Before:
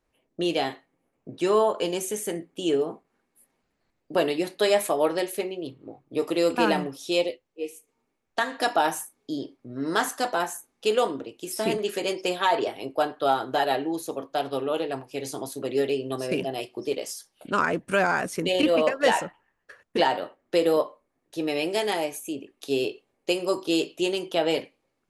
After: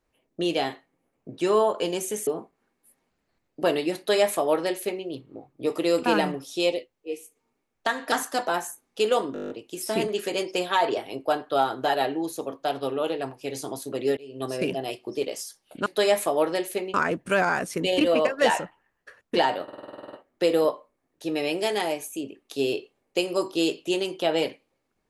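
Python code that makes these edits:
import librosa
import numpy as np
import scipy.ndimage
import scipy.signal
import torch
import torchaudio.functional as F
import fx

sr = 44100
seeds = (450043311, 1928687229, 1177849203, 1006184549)

y = fx.edit(x, sr, fx.cut(start_s=2.27, length_s=0.52),
    fx.duplicate(start_s=4.49, length_s=1.08, to_s=17.56),
    fx.cut(start_s=8.64, length_s=1.34),
    fx.stutter(start_s=11.2, slice_s=0.02, count=9),
    fx.fade_in_from(start_s=15.87, length_s=0.27, curve='qua', floor_db=-22.0),
    fx.stutter(start_s=20.25, slice_s=0.05, count=11), tone=tone)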